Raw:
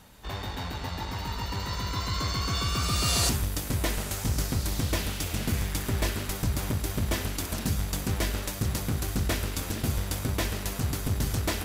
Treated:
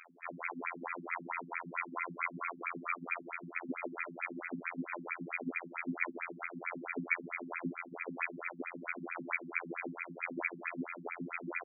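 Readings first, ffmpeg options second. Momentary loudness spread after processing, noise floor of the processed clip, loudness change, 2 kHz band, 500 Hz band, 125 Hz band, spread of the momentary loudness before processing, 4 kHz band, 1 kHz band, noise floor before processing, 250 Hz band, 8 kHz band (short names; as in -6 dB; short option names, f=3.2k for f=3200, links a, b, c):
5 LU, -52 dBFS, -10.0 dB, 0.0 dB, -9.0 dB, -25.5 dB, 7 LU, under -40 dB, -5.5 dB, -36 dBFS, -9.0 dB, under -40 dB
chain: -filter_complex "[0:a]aeval=exprs='max(val(0),0)':c=same,equalizer=f=110:t=o:w=0.91:g=-11,afftfilt=real='hypot(re,im)*cos(PI*b)':imag='0':win_size=2048:overlap=0.75,equalizer=f=1.5k:t=o:w=0.56:g=7,acrossover=split=8000[a][b];[b]acompressor=threshold=-51dB:ratio=4:attack=1:release=60[c];[a][c]amix=inputs=2:normalize=0,aecho=1:1:61|122|183|244:0.2|0.0758|0.0288|0.0109,acompressor=threshold=-33dB:ratio=8,aexciter=amount=14.8:drive=7.8:freq=2.6k,afftfilt=real='re*between(b*sr/1024,200*pow(1800/200,0.5+0.5*sin(2*PI*4.5*pts/sr))/1.41,200*pow(1800/200,0.5+0.5*sin(2*PI*4.5*pts/sr))*1.41)':imag='im*between(b*sr/1024,200*pow(1800/200,0.5+0.5*sin(2*PI*4.5*pts/sr))/1.41,200*pow(1800/200,0.5+0.5*sin(2*PI*4.5*pts/sr))*1.41)':win_size=1024:overlap=0.75,volume=10dB"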